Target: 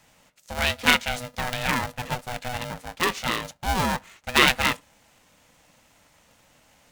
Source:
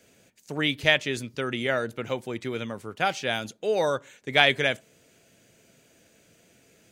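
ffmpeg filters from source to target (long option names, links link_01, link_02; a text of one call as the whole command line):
ffmpeg -i in.wav -af "equalizer=frequency=1900:width=1.5:gain=3.5,aeval=exprs='val(0)*sgn(sin(2*PI*370*n/s))':channel_layout=same" out.wav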